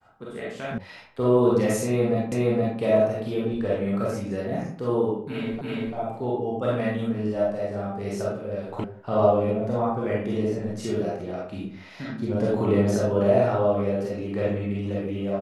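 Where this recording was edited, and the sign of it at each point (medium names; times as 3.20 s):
0.78 s: sound stops dead
2.32 s: repeat of the last 0.47 s
5.61 s: repeat of the last 0.34 s
8.84 s: sound stops dead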